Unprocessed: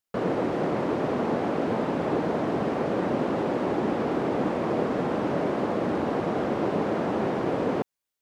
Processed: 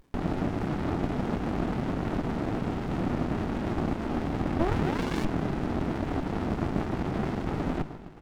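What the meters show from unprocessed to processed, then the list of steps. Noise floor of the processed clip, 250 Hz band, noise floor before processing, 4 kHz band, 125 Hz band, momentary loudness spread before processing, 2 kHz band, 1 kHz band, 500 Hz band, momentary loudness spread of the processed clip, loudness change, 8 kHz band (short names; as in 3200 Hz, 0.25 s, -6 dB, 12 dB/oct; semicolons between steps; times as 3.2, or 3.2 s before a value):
-41 dBFS, -2.0 dB, under -85 dBFS, -1.5 dB, +3.5 dB, 1 LU, -3.0 dB, -5.0 dB, -8.0 dB, 3 LU, -3.5 dB, n/a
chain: frequency-shifting echo 0.132 s, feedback 63%, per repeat +34 Hz, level -13 dB; painted sound rise, 4.59–5.25, 300–2500 Hz -20 dBFS; upward compressor, threshold -36 dBFS; notches 50/100/150/200 Hz; running maximum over 65 samples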